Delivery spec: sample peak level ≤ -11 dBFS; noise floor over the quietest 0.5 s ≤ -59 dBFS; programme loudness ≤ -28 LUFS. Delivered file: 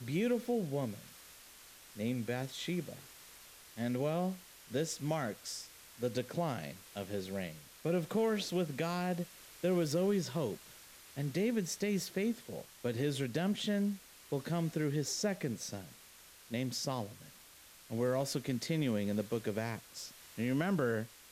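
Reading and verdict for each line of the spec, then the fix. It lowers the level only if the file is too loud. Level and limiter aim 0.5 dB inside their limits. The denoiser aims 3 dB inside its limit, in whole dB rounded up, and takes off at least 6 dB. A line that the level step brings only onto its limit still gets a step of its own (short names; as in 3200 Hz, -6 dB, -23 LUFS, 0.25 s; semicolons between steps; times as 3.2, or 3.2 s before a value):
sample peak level -20.0 dBFS: OK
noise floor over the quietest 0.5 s -58 dBFS: fail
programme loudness -36.5 LUFS: OK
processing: denoiser 6 dB, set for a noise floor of -58 dBFS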